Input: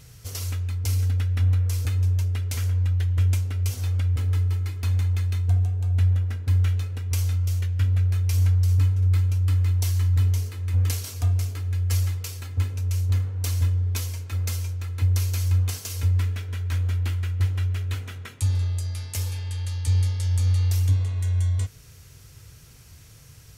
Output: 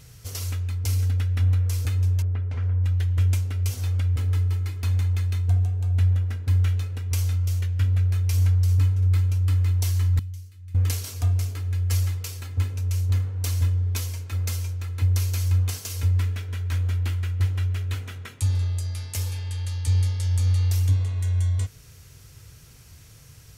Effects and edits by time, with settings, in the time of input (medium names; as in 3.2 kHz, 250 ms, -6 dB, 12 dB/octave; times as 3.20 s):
2.22–2.84 s: low-pass 1.5 kHz
10.19–10.75 s: amplifier tone stack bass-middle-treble 6-0-2